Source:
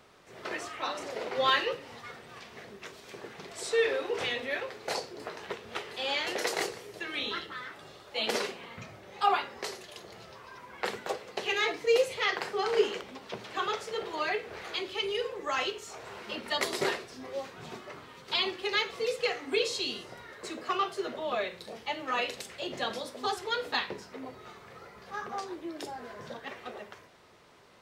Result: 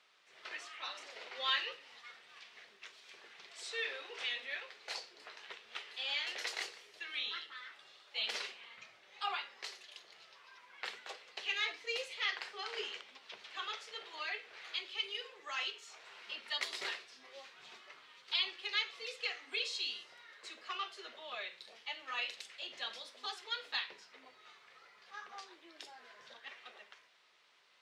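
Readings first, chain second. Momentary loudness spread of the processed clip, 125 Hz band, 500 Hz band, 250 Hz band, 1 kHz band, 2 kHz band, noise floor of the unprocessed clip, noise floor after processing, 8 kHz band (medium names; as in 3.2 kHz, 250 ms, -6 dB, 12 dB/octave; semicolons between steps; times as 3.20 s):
19 LU, under -30 dB, -19.5 dB, -23.0 dB, -13.0 dB, -6.5 dB, -52 dBFS, -64 dBFS, -9.5 dB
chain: band-pass filter 3.2 kHz, Q 0.96; trim -3.5 dB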